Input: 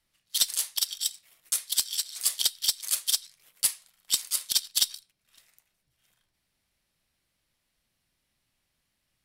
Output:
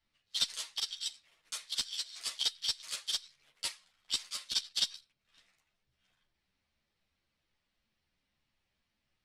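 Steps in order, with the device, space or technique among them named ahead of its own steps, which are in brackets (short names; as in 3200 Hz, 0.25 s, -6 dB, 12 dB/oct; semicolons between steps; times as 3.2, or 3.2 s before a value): string-machine ensemble chorus (ensemble effect; LPF 4700 Hz 12 dB/oct)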